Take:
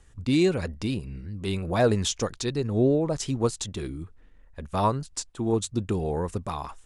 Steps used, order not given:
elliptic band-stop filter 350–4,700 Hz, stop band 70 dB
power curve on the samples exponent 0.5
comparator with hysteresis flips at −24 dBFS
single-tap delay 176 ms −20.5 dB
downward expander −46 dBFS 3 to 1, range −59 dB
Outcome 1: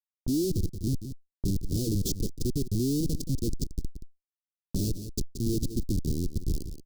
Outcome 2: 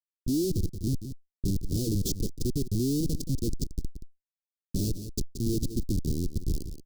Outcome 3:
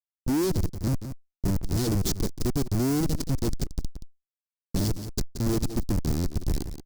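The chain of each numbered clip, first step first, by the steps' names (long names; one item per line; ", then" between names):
comparator with hysteresis, then single-tap delay, then power curve on the samples, then elliptic band-stop filter, then downward expander
comparator with hysteresis, then single-tap delay, then power curve on the samples, then downward expander, then elliptic band-stop filter
comparator with hysteresis, then elliptic band-stop filter, then downward expander, then single-tap delay, then power curve on the samples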